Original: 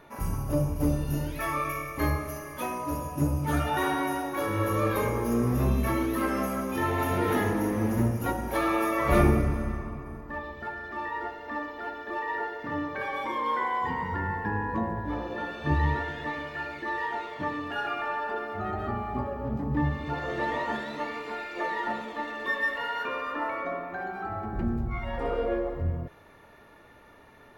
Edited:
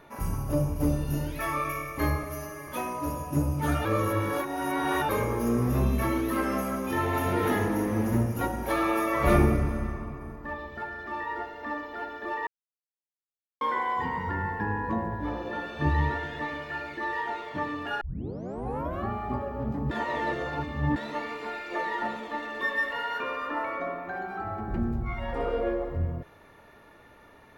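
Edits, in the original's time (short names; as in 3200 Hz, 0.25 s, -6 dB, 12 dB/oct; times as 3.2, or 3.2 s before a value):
2.23–2.53 stretch 1.5×
3.7–4.94 reverse
12.32–13.46 mute
17.86 tape start 1.09 s
19.76–20.81 reverse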